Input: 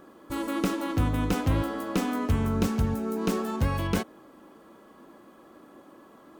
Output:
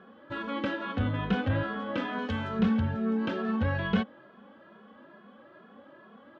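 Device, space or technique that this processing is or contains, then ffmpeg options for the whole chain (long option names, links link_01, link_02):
barber-pole flanger into a guitar amplifier: -filter_complex "[0:a]asettb=1/sr,asplit=3[link_01][link_02][link_03];[link_01]atrim=end=2.184[link_04];[link_02]atrim=start=2.18:end=2.59,asetpts=PTS-STARTPTS,afade=type=in:duration=0.004:curve=qsin,afade=type=out:start_time=0.406:duration=0.004:curve=qsin,bass=frequency=250:gain=-9,treble=frequency=4000:gain=12[link_05];[link_03]atrim=start=2.586[link_06];[link_04][link_05]acrossfade=duration=0.004:curve1=hsin:curve2=qsin[link_07];[link_07][link_06]acrossfade=duration=0.004:curve1=qsin:curve2=hsin,asplit=2[link_08][link_09];[link_09]adelay=2.4,afreqshift=2.3[link_10];[link_08][link_10]amix=inputs=2:normalize=1,asoftclip=type=tanh:threshold=-19.5dB,highpass=89,equalizer=frequency=93:width_type=q:width=4:gain=4,equalizer=frequency=210:width_type=q:width=4:gain=8,equalizer=frequency=320:width_type=q:width=4:gain=-7,equalizer=frequency=570:width_type=q:width=4:gain=5,equalizer=frequency=1600:width_type=q:width=4:gain=9,equalizer=frequency=3200:width_type=q:width=4:gain=6,lowpass=frequency=3700:width=0.5412,lowpass=frequency=3700:width=1.3066"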